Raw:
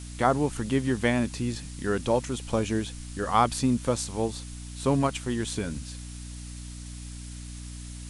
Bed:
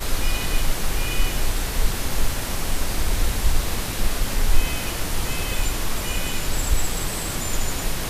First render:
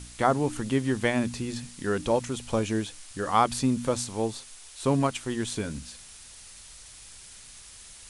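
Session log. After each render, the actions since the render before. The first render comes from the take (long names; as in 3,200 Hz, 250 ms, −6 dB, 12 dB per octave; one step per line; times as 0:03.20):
hum removal 60 Hz, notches 5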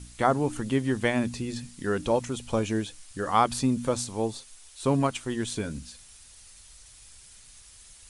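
broadband denoise 6 dB, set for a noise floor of −48 dBFS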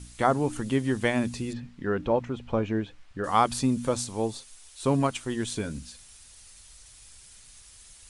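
0:01.53–0:03.24: low-pass filter 2,200 Hz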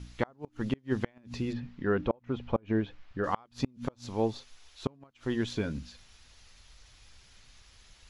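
moving average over 5 samples
gate with flip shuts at −15 dBFS, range −34 dB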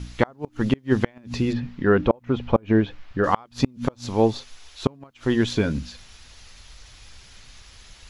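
level +10 dB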